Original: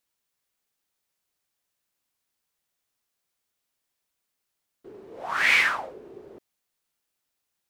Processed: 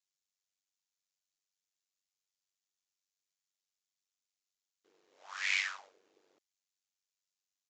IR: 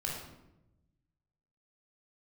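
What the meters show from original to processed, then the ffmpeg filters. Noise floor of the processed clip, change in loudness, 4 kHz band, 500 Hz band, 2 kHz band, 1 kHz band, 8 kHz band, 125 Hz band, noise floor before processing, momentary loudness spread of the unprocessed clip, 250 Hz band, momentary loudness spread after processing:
under -85 dBFS, -11.5 dB, -9.0 dB, -25.5 dB, -13.5 dB, -18.5 dB, -6.0 dB, no reading, -81 dBFS, 21 LU, under -25 dB, 17 LU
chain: -af "aeval=exprs='val(0)*sin(2*PI*48*n/s)':c=same,aresample=16000,aresample=44100,aderivative"

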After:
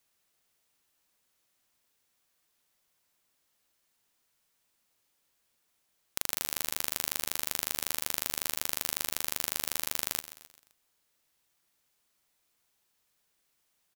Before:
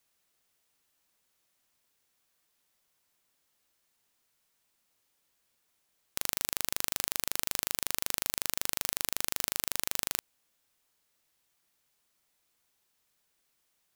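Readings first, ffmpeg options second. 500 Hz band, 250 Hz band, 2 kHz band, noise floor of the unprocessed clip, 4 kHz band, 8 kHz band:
0.0 dB, +0.5 dB, 0.0 dB, -76 dBFS, 0.0 dB, 0.0 dB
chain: -af "aecho=1:1:130|260|390|520:0.188|0.0866|0.0399|0.0183"

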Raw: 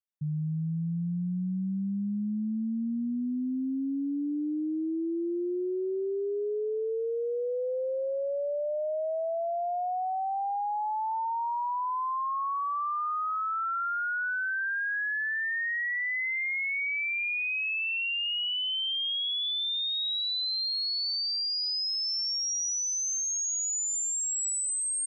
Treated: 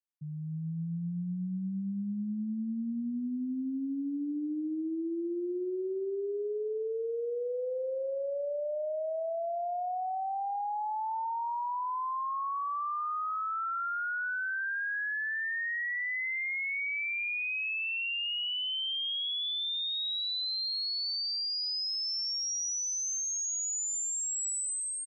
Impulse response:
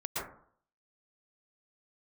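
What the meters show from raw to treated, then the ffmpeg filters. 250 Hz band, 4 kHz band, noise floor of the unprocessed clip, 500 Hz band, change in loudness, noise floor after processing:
-3.5 dB, -3.0 dB, -31 dBFS, -3.0 dB, -3.0 dB, -35 dBFS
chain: -af "highpass=120,dynaudnorm=f=200:g=5:m=1.68,aecho=1:1:291:0.126,volume=0.422"

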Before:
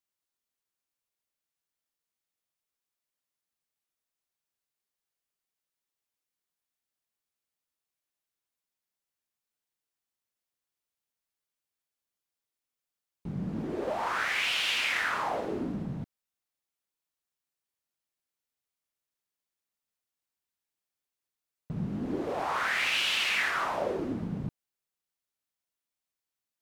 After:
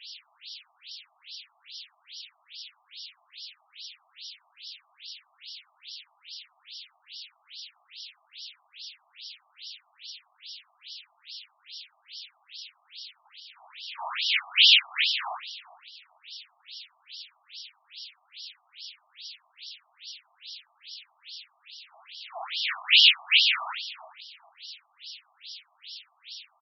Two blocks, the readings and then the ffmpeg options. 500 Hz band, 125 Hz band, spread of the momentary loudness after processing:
-16.5 dB, under -40 dB, 22 LU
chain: -filter_complex "[0:a]aeval=exprs='val(0)+0.5*0.00794*sgn(val(0))':c=same,aexciter=amount=10.4:drive=3.6:freq=2500,asplit=2[s0][s1];[s1]aecho=0:1:147:0.596[s2];[s0][s2]amix=inputs=2:normalize=0,afftfilt=real='re*between(b*sr/1024,860*pow(4100/860,0.5+0.5*sin(2*PI*2.4*pts/sr))/1.41,860*pow(4100/860,0.5+0.5*sin(2*PI*2.4*pts/sr))*1.41)':imag='im*between(b*sr/1024,860*pow(4100/860,0.5+0.5*sin(2*PI*2.4*pts/sr))/1.41,860*pow(4100/860,0.5+0.5*sin(2*PI*2.4*pts/sr))*1.41)':win_size=1024:overlap=0.75,volume=0.668"

